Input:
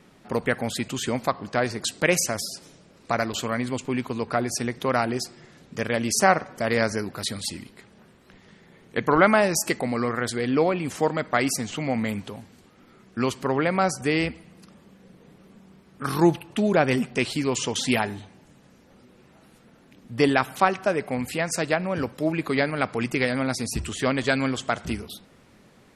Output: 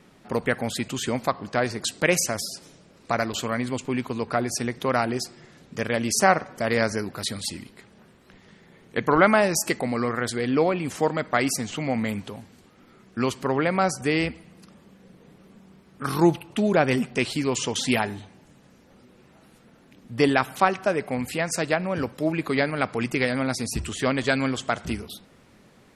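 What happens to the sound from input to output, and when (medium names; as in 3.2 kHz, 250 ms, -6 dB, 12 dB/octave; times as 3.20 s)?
16.08–16.57 s: band-stop 1.7 kHz, Q 13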